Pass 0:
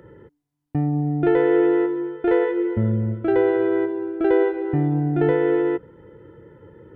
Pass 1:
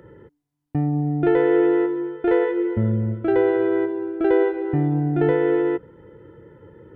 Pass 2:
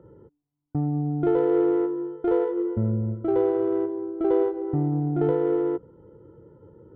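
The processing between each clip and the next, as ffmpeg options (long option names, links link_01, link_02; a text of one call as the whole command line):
ffmpeg -i in.wav -af anull out.wav
ffmpeg -i in.wav -af "superequalizer=11b=0.282:12b=0.282,adynamicsmooth=sensitivity=0.5:basefreq=1500,volume=-3.5dB" out.wav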